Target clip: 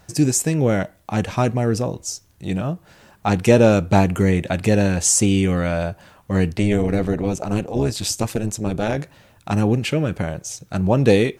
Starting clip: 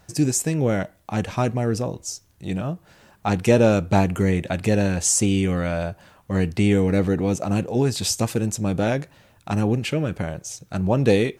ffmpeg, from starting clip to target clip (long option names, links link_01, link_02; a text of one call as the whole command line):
ffmpeg -i in.wav -filter_complex "[0:a]asplit=3[link_01][link_02][link_03];[link_01]afade=type=out:start_time=6.53:duration=0.02[link_04];[link_02]tremolo=f=210:d=0.71,afade=type=in:start_time=6.53:duration=0.02,afade=type=out:start_time=8.97:duration=0.02[link_05];[link_03]afade=type=in:start_time=8.97:duration=0.02[link_06];[link_04][link_05][link_06]amix=inputs=3:normalize=0,volume=3dB" out.wav